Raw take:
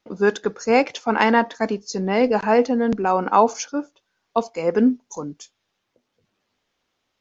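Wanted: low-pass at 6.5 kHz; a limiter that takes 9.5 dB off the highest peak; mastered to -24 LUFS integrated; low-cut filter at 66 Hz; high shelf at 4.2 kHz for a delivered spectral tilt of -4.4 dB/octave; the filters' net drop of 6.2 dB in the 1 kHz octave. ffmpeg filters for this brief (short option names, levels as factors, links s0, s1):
-af "highpass=66,lowpass=6500,equalizer=f=1000:t=o:g=-8.5,highshelf=f=4200:g=8,volume=1.19,alimiter=limit=0.251:level=0:latency=1"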